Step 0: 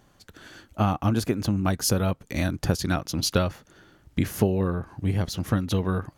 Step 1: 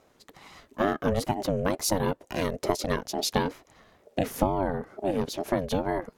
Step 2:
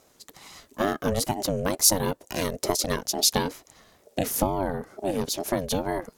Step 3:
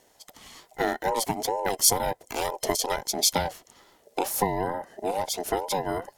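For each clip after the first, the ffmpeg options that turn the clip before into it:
-af "aeval=exprs='val(0)*sin(2*PI*420*n/s+420*0.25/2.2*sin(2*PI*2.2*n/s))':c=same"
-af "bass=f=250:g=0,treble=f=4000:g=12"
-af "afftfilt=real='real(if(between(b,1,1008),(2*floor((b-1)/48)+1)*48-b,b),0)':imag='imag(if(between(b,1,1008),(2*floor((b-1)/48)+1)*48-b,b),0)*if(between(b,1,1008),-1,1)':win_size=2048:overlap=0.75,volume=0.891"

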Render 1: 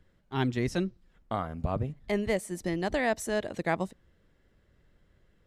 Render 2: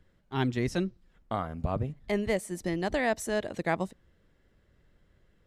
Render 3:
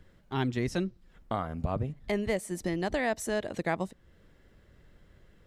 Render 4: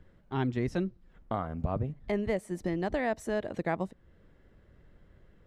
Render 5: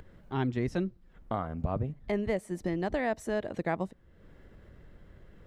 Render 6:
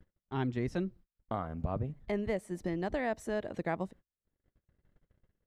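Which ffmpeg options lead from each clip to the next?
-af anull
-af "acompressor=threshold=0.00501:ratio=1.5,volume=2.11"
-af "highshelf=f=3000:g=-12"
-af "acompressor=mode=upward:threshold=0.00631:ratio=2.5"
-af "agate=range=0.00891:threshold=0.00398:ratio=16:detection=peak,volume=0.708"

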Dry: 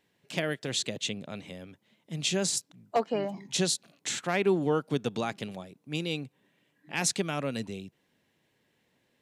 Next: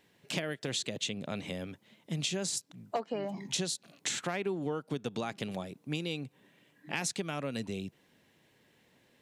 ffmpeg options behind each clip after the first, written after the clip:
-af "acompressor=threshold=0.0141:ratio=6,volume=1.88"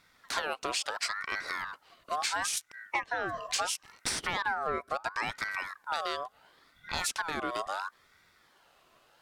-af "asoftclip=type=tanh:threshold=0.0794,aeval=exprs='val(0)*sin(2*PI*1300*n/s+1300*0.35/0.73*sin(2*PI*0.73*n/s))':c=same,volume=1.88"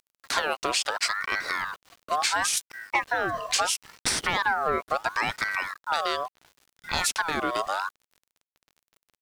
-af "aeval=exprs='val(0)*gte(abs(val(0)),0.00224)':c=same,volume=2.11"

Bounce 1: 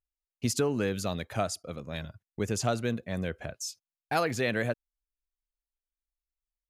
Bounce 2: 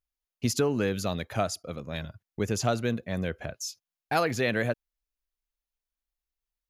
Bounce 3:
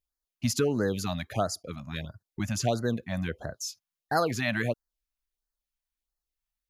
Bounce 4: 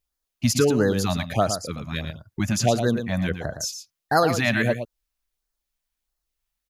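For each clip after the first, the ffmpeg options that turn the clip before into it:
-af "equalizer=f=8300:w=6.9:g=-11.5,volume=1.26"
-af "afftfilt=real='re*(1-between(b*sr/1024,370*pow(2900/370,0.5+0.5*sin(2*PI*1.5*pts/sr))/1.41,370*pow(2900/370,0.5+0.5*sin(2*PI*1.5*pts/sr))*1.41))':imag='im*(1-between(b*sr/1024,370*pow(2900/370,0.5+0.5*sin(2*PI*1.5*pts/sr))/1.41,370*pow(2900/370,0.5+0.5*sin(2*PI*1.5*pts/sr))*1.41))':win_size=1024:overlap=0.75"
-af "aecho=1:1:114:0.355,volume=2.11"

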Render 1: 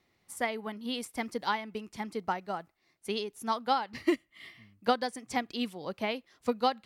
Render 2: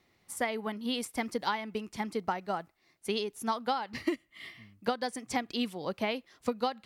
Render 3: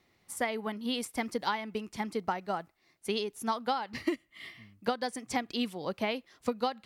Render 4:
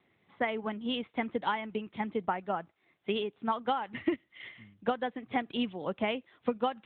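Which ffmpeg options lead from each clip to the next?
-af "acompressor=threshold=0.0355:ratio=10,volume=1.41"
-af anull
-af "volume=1.12" -ar 8000 -c:a libopencore_amrnb -b:a 12200

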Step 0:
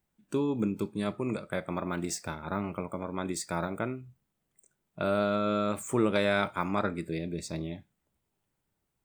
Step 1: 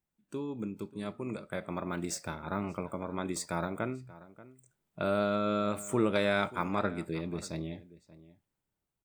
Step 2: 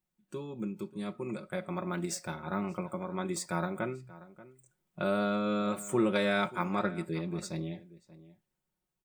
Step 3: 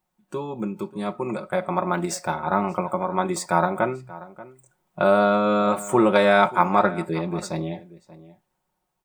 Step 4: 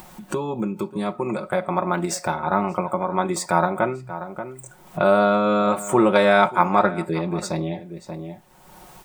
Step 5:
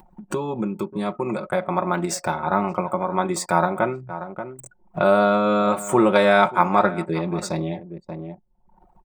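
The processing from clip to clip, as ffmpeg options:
-filter_complex "[0:a]dynaudnorm=f=430:g=7:m=2.24,asplit=2[s0][s1];[s1]adelay=583.1,volume=0.126,highshelf=f=4000:g=-13.1[s2];[s0][s2]amix=inputs=2:normalize=0,volume=0.376"
-af "aecho=1:1:5.5:0.66,volume=0.841"
-af "equalizer=f=840:t=o:w=1.3:g=11.5,volume=2.11"
-af "acompressor=mode=upward:threshold=0.0891:ratio=2.5,volume=1.12"
-af "anlmdn=0.631"

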